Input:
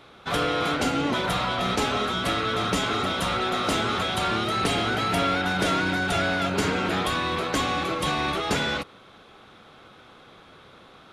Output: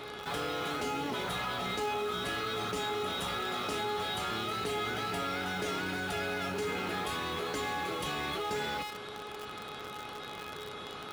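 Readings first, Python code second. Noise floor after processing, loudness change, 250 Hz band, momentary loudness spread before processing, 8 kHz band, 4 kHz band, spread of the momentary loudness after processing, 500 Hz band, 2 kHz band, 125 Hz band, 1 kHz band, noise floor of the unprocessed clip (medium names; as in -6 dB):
-43 dBFS, -10.0 dB, -12.0 dB, 2 LU, -8.5 dB, -8.5 dB, 8 LU, -7.5 dB, -9.0 dB, -12.0 dB, -8.5 dB, -51 dBFS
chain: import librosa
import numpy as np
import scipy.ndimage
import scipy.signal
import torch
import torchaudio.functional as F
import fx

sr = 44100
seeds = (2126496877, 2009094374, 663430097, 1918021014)

p1 = scipy.signal.sosfilt(scipy.signal.butter(2, 46.0, 'highpass', fs=sr, output='sos'), x)
p2 = fx.comb_fb(p1, sr, f0_hz=420.0, decay_s=0.38, harmonics='all', damping=0.0, mix_pct=90)
p3 = fx.quant_companded(p2, sr, bits=4)
p4 = p2 + F.gain(torch.from_numpy(p3), -6.5).numpy()
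p5 = fx.env_flatten(p4, sr, amount_pct=70)
y = F.gain(torch.from_numpy(p5), -3.5).numpy()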